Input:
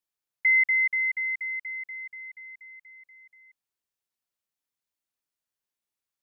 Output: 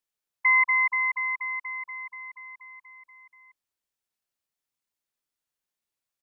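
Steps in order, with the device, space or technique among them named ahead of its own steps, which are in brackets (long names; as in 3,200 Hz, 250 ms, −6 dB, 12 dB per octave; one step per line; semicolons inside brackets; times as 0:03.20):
octave pedal (pitch-shifted copies added −12 semitones −8 dB)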